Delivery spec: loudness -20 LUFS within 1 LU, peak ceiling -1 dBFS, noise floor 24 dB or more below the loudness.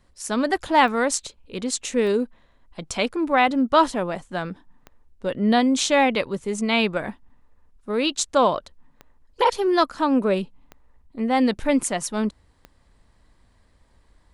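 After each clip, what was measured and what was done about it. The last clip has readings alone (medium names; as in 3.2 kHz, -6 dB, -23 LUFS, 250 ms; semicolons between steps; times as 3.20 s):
clicks found 6; loudness -22.5 LUFS; peak level -5.0 dBFS; loudness target -20.0 LUFS
-> de-click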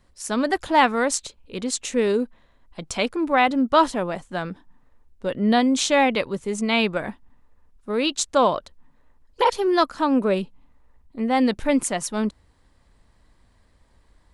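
clicks found 0; loudness -22.5 LUFS; peak level -5.0 dBFS; loudness target -20.0 LUFS
-> trim +2.5 dB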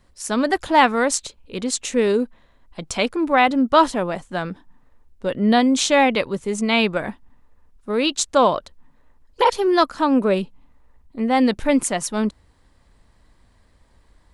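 loudness -20.0 LUFS; peak level -2.5 dBFS; noise floor -58 dBFS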